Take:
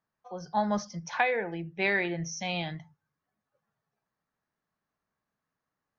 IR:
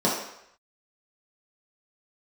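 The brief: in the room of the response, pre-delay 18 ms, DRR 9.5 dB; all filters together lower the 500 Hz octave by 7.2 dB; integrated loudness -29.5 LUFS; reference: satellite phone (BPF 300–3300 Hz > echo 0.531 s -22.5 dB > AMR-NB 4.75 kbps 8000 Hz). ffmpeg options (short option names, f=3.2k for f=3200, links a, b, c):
-filter_complex "[0:a]equalizer=f=500:t=o:g=-8.5,asplit=2[a][b];[1:a]atrim=start_sample=2205,adelay=18[c];[b][c]afir=irnorm=-1:irlink=0,volume=-24.5dB[d];[a][d]amix=inputs=2:normalize=0,highpass=300,lowpass=3.3k,aecho=1:1:531:0.075,volume=5dB" -ar 8000 -c:a libopencore_amrnb -b:a 4750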